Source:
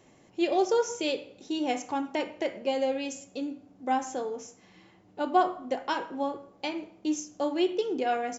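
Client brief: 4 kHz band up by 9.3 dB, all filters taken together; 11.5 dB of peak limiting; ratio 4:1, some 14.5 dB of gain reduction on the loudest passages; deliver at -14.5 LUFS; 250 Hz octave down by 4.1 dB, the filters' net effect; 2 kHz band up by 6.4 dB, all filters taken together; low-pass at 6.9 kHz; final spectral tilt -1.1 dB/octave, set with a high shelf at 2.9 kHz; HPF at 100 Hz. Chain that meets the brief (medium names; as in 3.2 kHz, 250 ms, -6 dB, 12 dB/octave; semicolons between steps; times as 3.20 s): high-pass 100 Hz; low-pass 6.9 kHz; peaking EQ 250 Hz -6 dB; peaking EQ 2 kHz +4.5 dB; treble shelf 2.9 kHz +3.5 dB; peaking EQ 4 kHz +8.5 dB; compression 4:1, threshold -35 dBFS; trim +26 dB; peak limiter -2.5 dBFS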